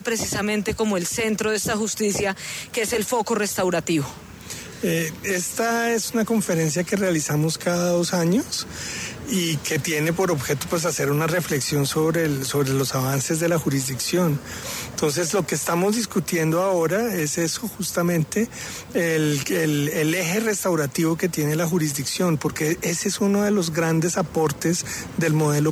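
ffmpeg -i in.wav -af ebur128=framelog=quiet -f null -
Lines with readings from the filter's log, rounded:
Integrated loudness:
  I:         -22.5 LUFS
  Threshold: -32.5 LUFS
Loudness range:
  LRA:         1.6 LU
  Threshold: -42.5 LUFS
  LRA low:   -23.5 LUFS
  LRA high:  -21.9 LUFS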